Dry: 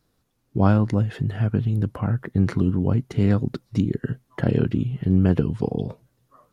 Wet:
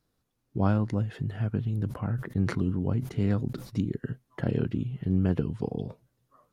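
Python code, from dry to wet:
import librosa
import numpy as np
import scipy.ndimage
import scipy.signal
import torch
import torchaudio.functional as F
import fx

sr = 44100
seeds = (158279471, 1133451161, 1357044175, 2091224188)

y = fx.sustainer(x, sr, db_per_s=110.0, at=(1.68, 3.81))
y = y * librosa.db_to_amplitude(-7.0)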